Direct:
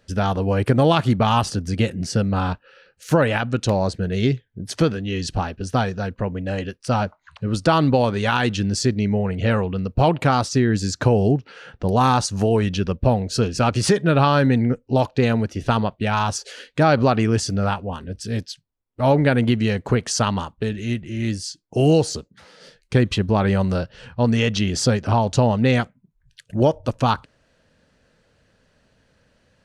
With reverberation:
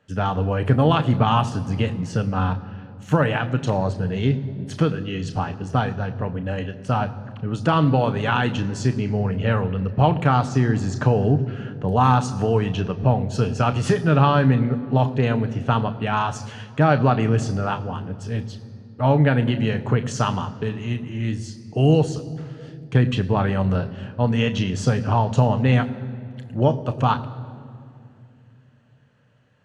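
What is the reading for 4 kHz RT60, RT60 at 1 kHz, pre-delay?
1.6 s, 2.3 s, 3 ms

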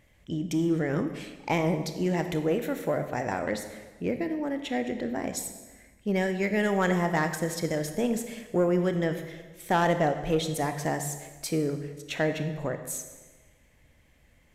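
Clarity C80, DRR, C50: 10.5 dB, 7.5 dB, 9.0 dB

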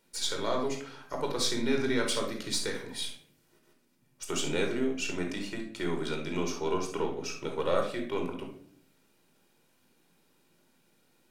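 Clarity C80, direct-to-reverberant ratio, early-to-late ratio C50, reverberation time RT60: 11.5 dB, 1.5 dB, 5.5 dB, 0.60 s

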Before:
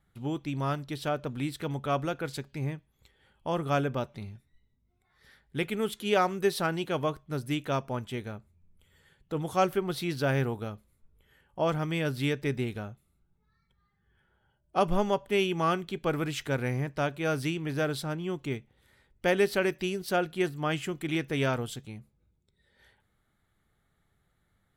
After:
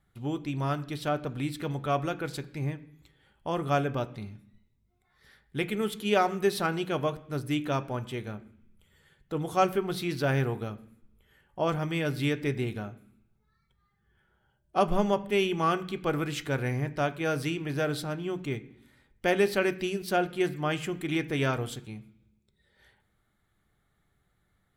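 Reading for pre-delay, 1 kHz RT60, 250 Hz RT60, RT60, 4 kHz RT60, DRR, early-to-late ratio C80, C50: 3 ms, 0.70 s, 0.85 s, 0.70 s, 0.95 s, 9.5 dB, 19.5 dB, 17.5 dB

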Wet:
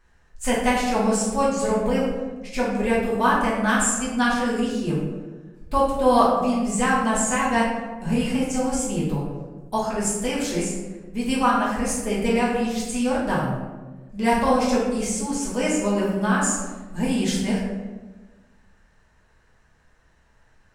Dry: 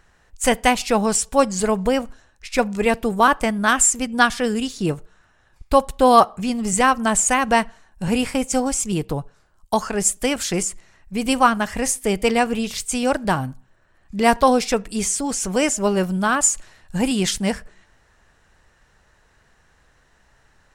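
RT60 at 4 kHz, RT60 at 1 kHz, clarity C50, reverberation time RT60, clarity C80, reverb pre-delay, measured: 0.65 s, 1.1 s, 1.0 dB, 1.3 s, 4.5 dB, 4 ms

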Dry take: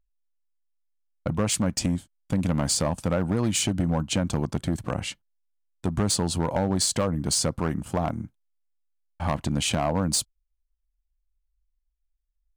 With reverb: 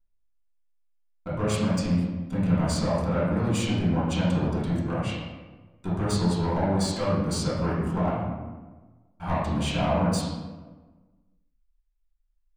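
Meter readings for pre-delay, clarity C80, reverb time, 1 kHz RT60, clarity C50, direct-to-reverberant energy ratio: 3 ms, 2.5 dB, 1.3 s, 1.2 s, -1.0 dB, -12.0 dB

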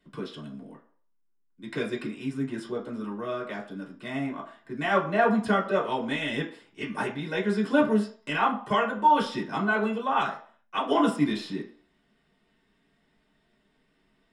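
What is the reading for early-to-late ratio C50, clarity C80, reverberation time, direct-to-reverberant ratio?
10.0 dB, 14.0 dB, 0.50 s, -3.5 dB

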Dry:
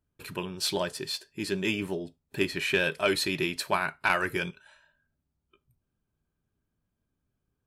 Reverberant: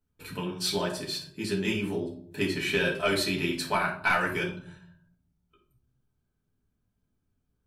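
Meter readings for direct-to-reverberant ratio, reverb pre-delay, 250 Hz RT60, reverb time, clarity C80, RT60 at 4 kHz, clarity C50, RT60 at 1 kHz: -3.0 dB, 4 ms, 0.90 s, 0.60 s, 12.0 dB, 0.35 s, 7.5 dB, 0.55 s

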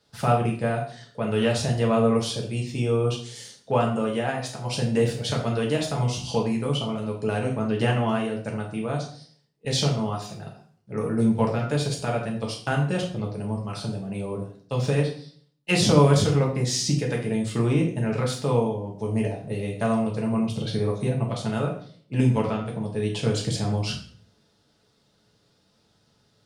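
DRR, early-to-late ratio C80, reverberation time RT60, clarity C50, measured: -2.0 dB, 11.0 dB, 0.50 s, 7.0 dB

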